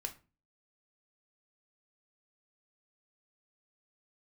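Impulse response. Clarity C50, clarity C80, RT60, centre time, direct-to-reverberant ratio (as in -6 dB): 14.5 dB, 21.0 dB, 0.35 s, 8 ms, 4.5 dB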